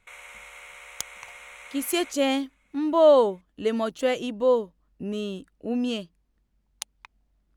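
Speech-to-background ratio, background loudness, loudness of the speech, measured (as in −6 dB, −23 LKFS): 19.0 dB, −43.5 LKFS, −24.5 LKFS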